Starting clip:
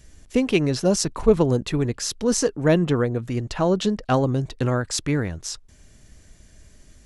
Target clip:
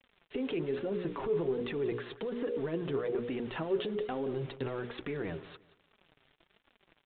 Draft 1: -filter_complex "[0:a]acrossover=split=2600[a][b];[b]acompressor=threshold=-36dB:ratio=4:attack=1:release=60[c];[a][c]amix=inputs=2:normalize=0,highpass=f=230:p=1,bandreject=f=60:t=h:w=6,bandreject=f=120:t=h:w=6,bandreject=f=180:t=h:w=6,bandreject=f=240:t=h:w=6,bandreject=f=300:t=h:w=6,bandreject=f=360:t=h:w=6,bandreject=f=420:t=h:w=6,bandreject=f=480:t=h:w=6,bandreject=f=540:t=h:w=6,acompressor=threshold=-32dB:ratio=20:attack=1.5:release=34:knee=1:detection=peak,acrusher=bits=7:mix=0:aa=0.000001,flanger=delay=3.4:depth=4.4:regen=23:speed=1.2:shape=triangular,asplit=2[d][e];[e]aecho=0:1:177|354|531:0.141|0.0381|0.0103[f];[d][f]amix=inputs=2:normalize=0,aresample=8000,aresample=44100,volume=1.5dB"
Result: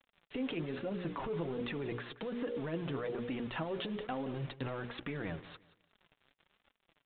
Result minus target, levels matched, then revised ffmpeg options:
500 Hz band -2.5 dB
-filter_complex "[0:a]acrossover=split=2600[a][b];[b]acompressor=threshold=-36dB:ratio=4:attack=1:release=60[c];[a][c]amix=inputs=2:normalize=0,highpass=f=230:p=1,bandreject=f=60:t=h:w=6,bandreject=f=120:t=h:w=6,bandreject=f=180:t=h:w=6,bandreject=f=240:t=h:w=6,bandreject=f=300:t=h:w=6,bandreject=f=360:t=h:w=6,bandreject=f=420:t=h:w=6,bandreject=f=480:t=h:w=6,bandreject=f=540:t=h:w=6,acompressor=threshold=-32dB:ratio=20:attack=1.5:release=34:knee=1:detection=peak,equalizer=f=400:t=o:w=0.38:g=11,acrusher=bits=7:mix=0:aa=0.000001,flanger=delay=3.4:depth=4.4:regen=23:speed=1.2:shape=triangular,asplit=2[d][e];[e]aecho=0:1:177|354|531:0.141|0.0381|0.0103[f];[d][f]amix=inputs=2:normalize=0,aresample=8000,aresample=44100,volume=1.5dB"

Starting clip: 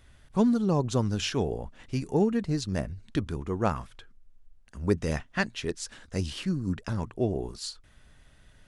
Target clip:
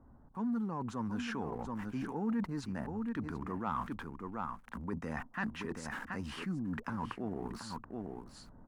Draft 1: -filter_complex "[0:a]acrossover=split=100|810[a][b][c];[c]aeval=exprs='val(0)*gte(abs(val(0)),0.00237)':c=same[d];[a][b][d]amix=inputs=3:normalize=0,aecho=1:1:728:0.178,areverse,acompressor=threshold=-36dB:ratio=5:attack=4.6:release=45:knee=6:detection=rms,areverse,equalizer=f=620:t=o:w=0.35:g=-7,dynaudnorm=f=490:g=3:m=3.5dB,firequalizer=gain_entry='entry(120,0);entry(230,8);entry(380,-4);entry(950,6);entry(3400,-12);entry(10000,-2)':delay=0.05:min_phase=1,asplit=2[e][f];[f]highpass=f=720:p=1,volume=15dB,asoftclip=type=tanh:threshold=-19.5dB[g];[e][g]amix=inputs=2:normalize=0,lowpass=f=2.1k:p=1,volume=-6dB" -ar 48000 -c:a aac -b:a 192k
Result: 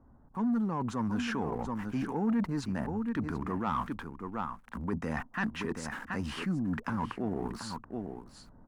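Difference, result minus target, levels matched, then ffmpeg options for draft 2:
compressor: peak gain reduction -6 dB
-filter_complex "[0:a]acrossover=split=100|810[a][b][c];[c]aeval=exprs='val(0)*gte(abs(val(0)),0.00237)':c=same[d];[a][b][d]amix=inputs=3:normalize=0,aecho=1:1:728:0.178,areverse,acompressor=threshold=-43.5dB:ratio=5:attack=4.6:release=45:knee=6:detection=rms,areverse,equalizer=f=620:t=o:w=0.35:g=-7,dynaudnorm=f=490:g=3:m=3.5dB,firequalizer=gain_entry='entry(120,0);entry(230,8);entry(380,-4);entry(950,6);entry(3400,-12);entry(10000,-2)':delay=0.05:min_phase=1,asplit=2[e][f];[f]highpass=f=720:p=1,volume=15dB,asoftclip=type=tanh:threshold=-19.5dB[g];[e][g]amix=inputs=2:normalize=0,lowpass=f=2.1k:p=1,volume=-6dB" -ar 48000 -c:a aac -b:a 192k

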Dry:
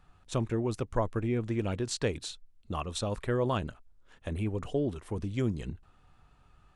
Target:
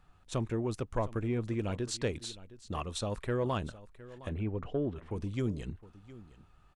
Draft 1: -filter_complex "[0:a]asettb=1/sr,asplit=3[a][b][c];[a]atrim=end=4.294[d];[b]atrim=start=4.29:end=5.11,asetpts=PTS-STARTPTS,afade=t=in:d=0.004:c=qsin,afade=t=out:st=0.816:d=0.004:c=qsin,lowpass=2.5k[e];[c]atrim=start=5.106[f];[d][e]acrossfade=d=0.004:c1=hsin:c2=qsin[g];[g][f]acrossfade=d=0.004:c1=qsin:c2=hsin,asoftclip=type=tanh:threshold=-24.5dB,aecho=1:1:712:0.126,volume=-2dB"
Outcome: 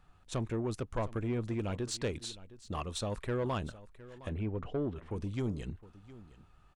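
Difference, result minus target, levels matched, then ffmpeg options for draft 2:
soft clip: distortion +9 dB
-filter_complex "[0:a]asettb=1/sr,asplit=3[a][b][c];[a]atrim=end=4.294[d];[b]atrim=start=4.29:end=5.11,asetpts=PTS-STARTPTS,afade=t=in:d=0.004:c=qsin,afade=t=out:st=0.816:d=0.004:c=qsin,lowpass=2.5k[e];[c]atrim=start=5.106[f];[d][e]acrossfade=d=0.004:c1=hsin:c2=qsin[g];[g][f]acrossfade=d=0.004:c1=qsin:c2=hsin,asoftclip=type=tanh:threshold=-18dB,aecho=1:1:712:0.126,volume=-2dB"

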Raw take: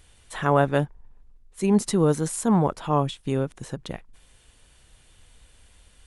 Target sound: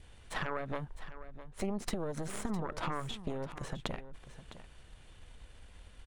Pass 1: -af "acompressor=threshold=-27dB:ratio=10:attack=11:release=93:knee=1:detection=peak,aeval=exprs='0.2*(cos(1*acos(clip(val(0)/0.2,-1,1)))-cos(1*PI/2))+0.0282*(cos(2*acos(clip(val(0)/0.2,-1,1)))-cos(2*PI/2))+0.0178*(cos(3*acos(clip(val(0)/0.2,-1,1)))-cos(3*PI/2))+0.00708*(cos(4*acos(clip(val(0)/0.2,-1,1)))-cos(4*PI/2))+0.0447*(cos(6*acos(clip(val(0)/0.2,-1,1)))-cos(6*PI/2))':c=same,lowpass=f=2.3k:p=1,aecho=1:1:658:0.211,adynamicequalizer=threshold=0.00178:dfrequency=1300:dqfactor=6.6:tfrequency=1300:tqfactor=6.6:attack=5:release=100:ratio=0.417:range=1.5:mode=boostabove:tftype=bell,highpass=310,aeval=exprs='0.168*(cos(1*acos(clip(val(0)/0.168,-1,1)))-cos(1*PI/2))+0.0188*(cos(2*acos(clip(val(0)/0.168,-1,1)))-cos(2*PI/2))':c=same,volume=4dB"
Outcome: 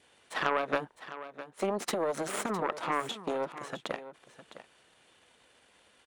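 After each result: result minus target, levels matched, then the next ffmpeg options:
compressor: peak gain reduction -7 dB; 250 Hz band -4.5 dB
-af "acompressor=threshold=-35dB:ratio=10:attack=11:release=93:knee=1:detection=peak,aeval=exprs='0.2*(cos(1*acos(clip(val(0)/0.2,-1,1)))-cos(1*PI/2))+0.0282*(cos(2*acos(clip(val(0)/0.2,-1,1)))-cos(2*PI/2))+0.0178*(cos(3*acos(clip(val(0)/0.2,-1,1)))-cos(3*PI/2))+0.00708*(cos(4*acos(clip(val(0)/0.2,-1,1)))-cos(4*PI/2))+0.0447*(cos(6*acos(clip(val(0)/0.2,-1,1)))-cos(6*PI/2))':c=same,lowpass=f=2.3k:p=1,aecho=1:1:658:0.211,adynamicequalizer=threshold=0.00178:dfrequency=1300:dqfactor=6.6:tfrequency=1300:tqfactor=6.6:attack=5:release=100:ratio=0.417:range=1.5:mode=boostabove:tftype=bell,highpass=310,aeval=exprs='0.168*(cos(1*acos(clip(val(0)/0.168,-1,1)))-cos(1*PI/2))+0.0188*(cos(2*acos(clip(val(0)/0.168,-1,1)))-cos(2*PI/2))':c=same,volume=4dB"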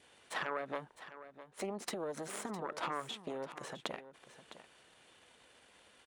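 250 Hz band -4.0 dB
-af "acompressor=threshold=-35dB:ratio=10:attack=11:release=93:knee=1:detection=peak,aeval=exprs='0.2*(cos(1*acos(clip(val(0)/0.2,-1,1)))-cos(1*PI/2))+0.0282*(cos(2*acos(clip(val(0)/0.2,-1,1)))-cos(2*PI/2))+0.0178*(cos(3*acos(clip(val(0)/0.2,-1,1)))-cos(3*PI/2))+0.00708*(cos(4*acos(clip(val(0)/0.2,-1,1)))-cos(4*PI/2))+0.0447*(cos(6*acos(clip(val(0)/0.2,-1,1)))-cos(6*PI/2))':c=same,lowpass=f=2.3k:p=1,aecho=1:1:658:0.211,adynamicequalizer=threshold=0.00178:dfrequency=1300:dqfactor=6.6:tfrequency=1300:tqfactor=6.6:attack=5:release=100:ratio=0.417:range=1.5:mode=boostabove:tftype=bell,aeval=exprs='0.168*(cos(1*acos(clip(val(0)/0.168,-1,1)))-cos(1*PI/2))+0.0188*(cos(2*acos(clip(val(0)/0.168,-1,1)))-cos(2*PI/2))':c=same,volume=4dB"

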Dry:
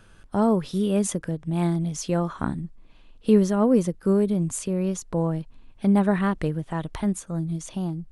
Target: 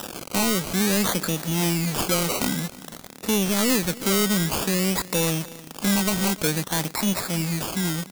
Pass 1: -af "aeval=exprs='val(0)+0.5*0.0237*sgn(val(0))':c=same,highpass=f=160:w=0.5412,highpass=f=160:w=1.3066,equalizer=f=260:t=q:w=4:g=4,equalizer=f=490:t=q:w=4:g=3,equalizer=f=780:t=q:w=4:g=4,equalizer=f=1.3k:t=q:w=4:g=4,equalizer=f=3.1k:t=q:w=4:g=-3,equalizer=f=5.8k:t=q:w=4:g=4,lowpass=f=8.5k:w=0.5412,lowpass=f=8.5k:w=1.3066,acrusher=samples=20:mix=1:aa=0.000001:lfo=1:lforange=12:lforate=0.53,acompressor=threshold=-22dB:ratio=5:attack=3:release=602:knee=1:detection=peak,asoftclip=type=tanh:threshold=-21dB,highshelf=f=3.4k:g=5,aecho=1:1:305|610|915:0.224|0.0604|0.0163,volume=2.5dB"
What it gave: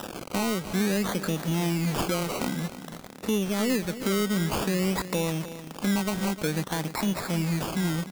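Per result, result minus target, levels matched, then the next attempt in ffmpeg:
compressor: peak gain reduction +6 dB; 8000 Hz band -5.0 dB; echo-to-direct +6.5 dB
-af "aeval=exprs='val(0)+0.5*0.0237*sgn(val(0))':c=same,highpass=f=160:w=0.5412,highpass=f=160:w=1.3066,equalizer=f=260:t=q:w=4:g=4,equalizer=f=490:t=q:w=4:g=3,equalizer=f=780:t=q:w=4:g=4,equalizer=f=1.3k:t=q:w=4:g=4,equalizer=f=3.1k:t=q:w=4:g=-3,equalizer=f=5.8k:t=q:w=4:g=4,lowpass=f=8.5k:w=0.5412,lowpass=f=8.5k:w=1.3066,acrusher=samples=20:mix=1:aa=0.000001:lfo=1:lforange=12:lforate=0.53,acompressor=threshold=-14.5dB:ratio=5:attack=3:release=602:knee=1:detection=peak,asoftclip=type=tanh:threshold=-21dB,highshelf=f=3.4k:g=5,aecho=1:1:305|610|915:0.224|0.0604|0.0163,volume=2.5dB"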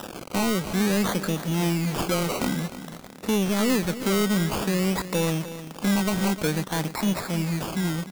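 8000 Hz band -5.0 dB; echo-to-direct +6.5 dB
-af "aeval=exprs='val(0)+0.5*0.0237*sgn(val(0))':c=same,highpass=f=160:w=0.5412,highpass=f=160:w=1.3066,equalizer=f=260:t=q:w=4:g=4,equalizer=f=490:t=q:w=4:g=3,equalizer=f=780:t=q:w=4:g=4,equalizer=f=1.3k:t=q:w=4:g=4,equalizer=f=3.1k:t=q:w=4:g=-3,equalizer=f=5.8k:t=q:w=4:g=4,lowpass=f=8.5k:w=0.5412,lowpass=f=8.5k:w=1.3066,acrusher=samples=20:mix=1:aa=0.000001:lfo=1:lforange=12:lforate=0.53,acompressor=threshold=-14.5dB:ratio=5:attack=3:release=602:knee=1:detection=peak,asoftclip=type=tanh:threshold=-21dB,highshelf=f=3.4k:g=14,aecho=1:1:305|610|915:0.224|0.0604|0.0163,volume=2.5dB"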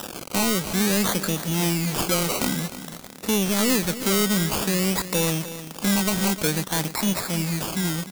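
echo-to-direct +6.5 dB
-af "aeval=exprs='val(0)+0.5*0.0237*sgn(val(0))':c=same,highpass=f=160:w=0.5412,highpass=f=160:w=1.3066,equalizer=f=260:t=q:w=4:g=4,equalizer=f=490:t=q:w=4:g=3,equalizer=f=780:t=q:w=4:g=4,equalizer=f=1.3k:t=q:w=4:g=4,equalizer=f=3.1k:t=q:w=4:g=-3,equalizer=f=5.8k:t=q:w=4:g=4,lowpass=f=8.5k:w=0.5412,lowpass=f=8.5k:w=1.3066,acrusher=samples=20:mix=1:aa=0.000001:lfo=1:lforange=12:lforate=0.53,acompressor=threshold=-14.5dB:ratio=5:attack=3:release=602:knee=1:detection=peak,asoftclip=type=tanh:threshold=-21dB,highshelf=f=3.4k:g=14,aecho=1:1:305|610:0.106|0.0286,volume=2.5dB"

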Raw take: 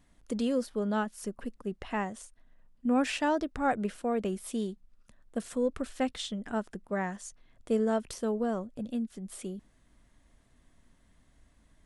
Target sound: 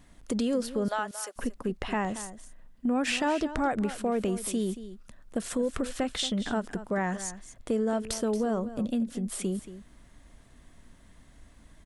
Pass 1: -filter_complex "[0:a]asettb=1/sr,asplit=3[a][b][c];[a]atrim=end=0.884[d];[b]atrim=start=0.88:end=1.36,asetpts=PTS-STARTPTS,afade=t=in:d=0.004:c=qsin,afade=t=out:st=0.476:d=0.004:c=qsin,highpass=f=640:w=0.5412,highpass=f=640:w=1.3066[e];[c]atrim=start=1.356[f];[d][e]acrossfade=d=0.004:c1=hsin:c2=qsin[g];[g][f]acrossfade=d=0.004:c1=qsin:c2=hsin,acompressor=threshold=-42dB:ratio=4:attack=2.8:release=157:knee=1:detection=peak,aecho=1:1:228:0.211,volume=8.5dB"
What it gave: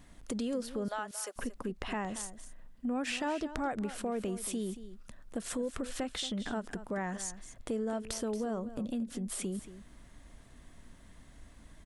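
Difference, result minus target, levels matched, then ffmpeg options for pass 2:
compressor: peak gain reduction +6.5 dB
-filter_complex "[0:a]asettb=1/sr,asplit=3[a][b][c];[a]atrim=end=0.884[d];[b]atrim=start=0.88:end=1.36,asetpts=PTS-STARTPTS,afade=t=in:d=0.004:c=qsin,afade=t=out:st=0.476:d=0.004:c=qsin,highpass=f=640:w=0.5412,highpass=f=640:w=1.3066[e];[c]atrim=start=1.356[f];[d][e]acrossfade=d=0.004:c1=hsin:c2=qsin[g];[g][f]acrossfade=d=0.004:c1=qsin:c2=hsin,acompressor=threshold=-33dB:ratio=4:attack=2.8:release=157:knee=1:detection=peak,aecho=1:1:228:0.211,volume=8.5dB"

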